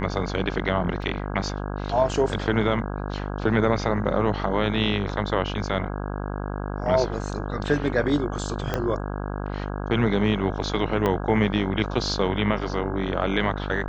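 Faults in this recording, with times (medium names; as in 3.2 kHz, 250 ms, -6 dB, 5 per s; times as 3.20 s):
buzz 50 Hz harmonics 33 -30 dBFS
1.02 s: dropout 2.4 ms
8.74 s: pop -11 dBFS
11.06 s: pop -11 dBFS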